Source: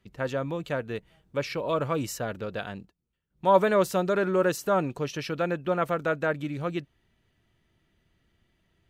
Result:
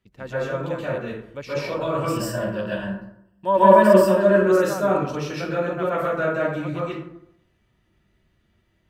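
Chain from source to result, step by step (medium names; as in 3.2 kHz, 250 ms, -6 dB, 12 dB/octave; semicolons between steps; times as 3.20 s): 1.97–4.30 s: rippled EQ curve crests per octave 1.3, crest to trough 13 dB; plate-style reverb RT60 0.73 s, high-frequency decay 0.5×, pre-delay 115 ms, DRR -9 dB; trim -6 dB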